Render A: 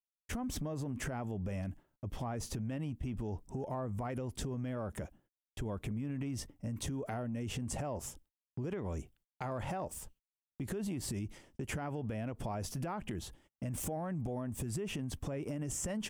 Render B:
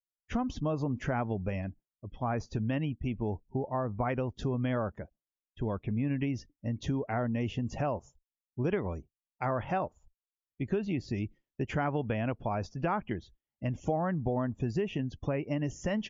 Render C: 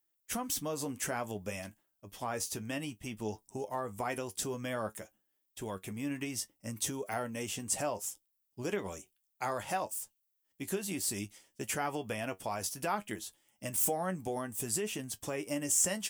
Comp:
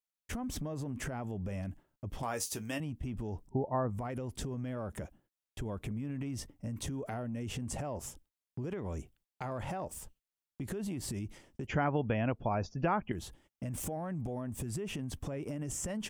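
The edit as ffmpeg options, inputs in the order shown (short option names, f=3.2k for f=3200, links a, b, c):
-filter_complex "[1:a]asplit=2[a][b];[0:a]asplit=4[c][d][e][f];[c]atrim=end=2.232[g];[2:a]atrim=start=2.228:end=2.802[h];[d]atrim=start=2.798:end=3.492[i];[a]atrim=start=3.488:end=3.902[j];[e]atrim=start=3.898:end=11.672[k];[b]atrim=start=11.668:end=13.122[l];[f]atrim=start=13.118[m];[g][h]acrossfade=d=0.004:c1=hsin:c2=hsin[n];[n][i]acrossfade=d=0.004:c1=hsin:c2=hsin[o];[o][j]acrossfade=d=0.004:c1=hsin:c2=hsin[p];[p][k]acrossfade=d=0.004:c1=hsin:c2=hsin[q];[q][l]acrossfade=d=0.004:c1=hsin:c2=hsin[r];[r][m]acrossfade=d=0.004:c1=hsin:c2=hsin"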